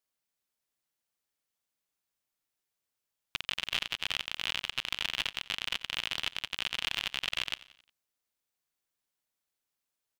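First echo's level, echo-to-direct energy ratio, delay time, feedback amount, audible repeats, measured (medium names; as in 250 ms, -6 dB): -19.0 dB, -17.5 dB, 89 ms, 51%, 3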